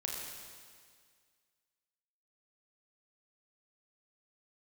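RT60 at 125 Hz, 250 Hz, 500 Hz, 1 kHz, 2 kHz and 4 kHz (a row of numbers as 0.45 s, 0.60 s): 1.9 s, 1.9 s, 1.9 s, 1.9 s, 1.9 s, 1.9 s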